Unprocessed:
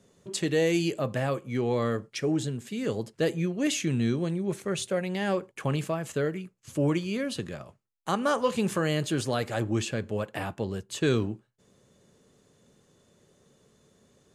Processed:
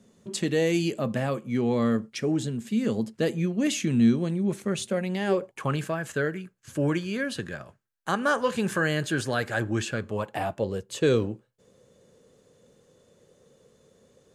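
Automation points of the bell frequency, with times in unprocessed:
bell +12 dB 0.29 oct
5.14 s 220 Hz
5.76 s 1600 Hz
9.85 s 1600 Hz
10.69 s 500 Hz

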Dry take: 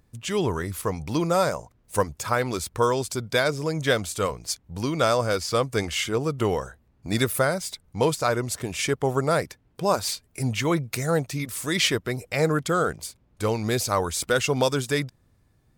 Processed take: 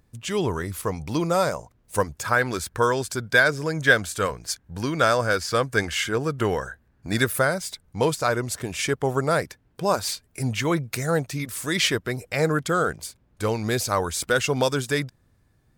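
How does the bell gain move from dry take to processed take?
bell 1600 Hz 0.33 oct
1.96 s +1 dB
2.43 s +12 dB
7.08 s +12 dB
7.54 s +4 dB

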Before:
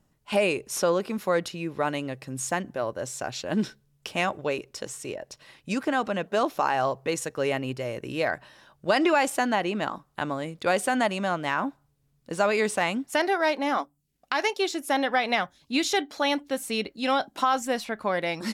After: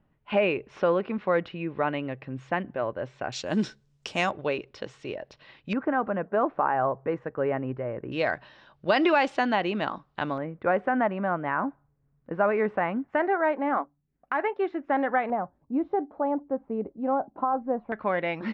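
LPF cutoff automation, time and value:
LPF 24 dB/oct
2800 Hz
from 3.32 s 7400 Hz
from 4.31 s 3900 Hz
from 5.73 s 1700 Hz
from 8.12 s 4300 Hz
from 10.38 s 1800 Hz
from 15.3 s 1000 Hz
from 17.92 s 2700 Hz

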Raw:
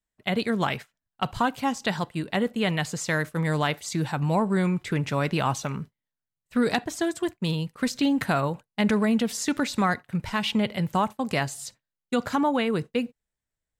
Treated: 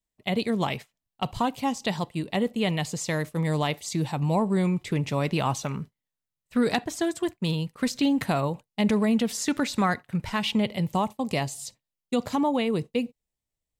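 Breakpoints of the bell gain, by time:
bell 1500 Hz 0.52 oct
5.12 s -11.5 dB
5.71 s -3.5 dB
7.92 s -3.5 dB
8.8 s -13.5 dB
9.32 s -2 dB
10.33 s -2 dB
10.87 s -14 dB

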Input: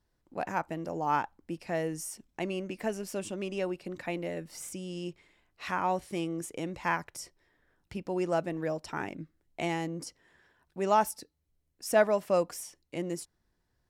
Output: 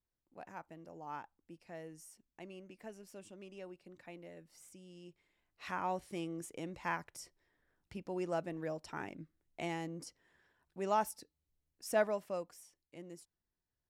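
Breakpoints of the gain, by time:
5.07 s -16.5 dB
5.68 s -7.5 dB
12.04 s -7.5 dB
12.51 s -16 dB

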